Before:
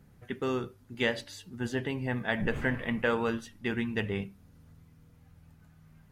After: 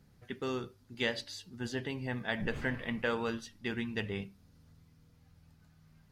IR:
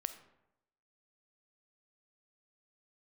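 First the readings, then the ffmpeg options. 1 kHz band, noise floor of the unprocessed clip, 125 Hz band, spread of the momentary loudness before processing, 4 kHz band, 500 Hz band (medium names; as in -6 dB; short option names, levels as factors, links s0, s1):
-5.0 dB, -60 dBFS, -5.0 dB, 10 LU, -0.5 dB, -5.0 dB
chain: -af "equalizer=f=4700:w=1.4:g=8.5,volume=0.562"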